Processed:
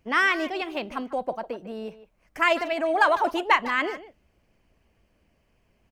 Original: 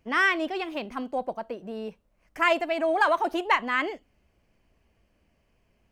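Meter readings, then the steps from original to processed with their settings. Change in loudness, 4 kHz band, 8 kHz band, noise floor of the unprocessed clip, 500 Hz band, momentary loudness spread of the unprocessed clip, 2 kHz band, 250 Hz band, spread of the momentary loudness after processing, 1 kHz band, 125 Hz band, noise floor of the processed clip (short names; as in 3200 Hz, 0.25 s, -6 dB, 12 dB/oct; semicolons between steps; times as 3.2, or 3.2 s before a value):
+2.0 dB, +2.0 dB, +2.5 dB, -69 dBFS, +1.0 dB, 14 LU, +1.5 dB, +0.5 dB, 15 LU, +2.0 dB, n/a, -68 dBFS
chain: speakerphone echo 0.15 s, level -13 dB; harmonic-percussive split percussive +3 dB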